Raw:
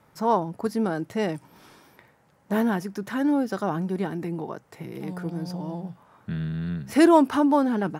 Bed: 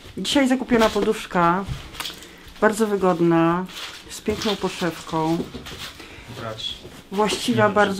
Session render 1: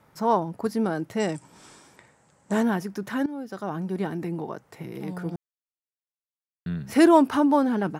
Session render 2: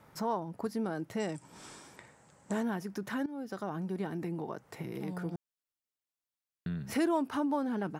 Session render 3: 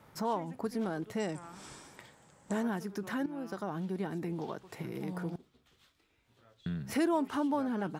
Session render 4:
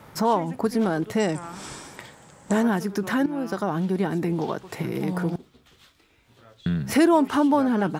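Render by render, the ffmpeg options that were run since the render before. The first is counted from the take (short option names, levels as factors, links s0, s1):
-filter_complex "[0:a]asettb=1/sr,asplit=3[s0][s1][s2];[s0]atrim=end=1.204[s3];[s1]atrim=start=1.2:end=2.63,asetpts=PTS-STARTPTS,afade=t=in:d=0.004:c=qsin,afade=t=out:st=1.426:d=0.004:c=qsin,lowpass=f=7800:t=q:w=6.6[s4];[s2]atrim=start=2.626[s5];[s3][s4]acrossfade=d=0.004:c1=hsin:c2=qsin[s6];[s6][s5]acrossfade=d=0.004:c1=qsin:c2=hsin,asplit=4[s7][s8][s9][s10];[s7]atrim=end=3.26,asetpts=PTS-STARTPTS,afade=t=out:st=3.256:d=0.004:c=hsin:silence=0.149624[s11];[s8]atrim=start=3.26:end=5.36,asetpts=PTS-STARTPTS,afade=t=in:d=0.81:silence=0.149624,afade=t=out:st=2.096:d=0.004:c=hsin[s12];[s9]atrim=start=5.36:end=6.66,asetpts=PTS-STARTPTS,volume=0[s13];[s10]atrim=start=6.66,asetpts=PTS-STARTPTS,afade=t=in:d=0.004:c=hsin[s14];[s11][s12][s13][s14]concat=n=4:v=0:a=1"
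-af "acompressor=threshold=0.0126:ratio=2"
-filter_complex "[1:a]volume=0.0237[s0];[0:a][s0]amix=inputs=2:normalize=0"
-af "volume=3.76"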